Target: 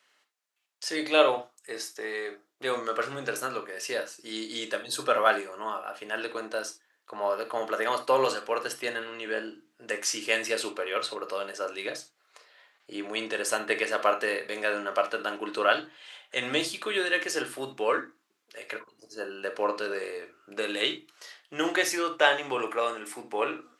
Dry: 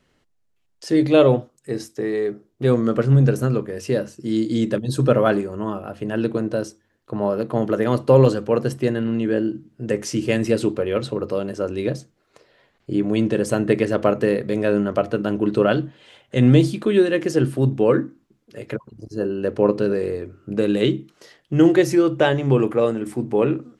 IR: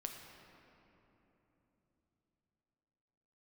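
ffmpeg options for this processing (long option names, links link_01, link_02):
-filter_complex "[0:a]highpass=1000[link_01];[1:a]atrim=start_sample=2205,atrim=end_sample=3528[link_02];[link_01][link_02]afir=irnorm=-1:irlink=0,volume=6dB"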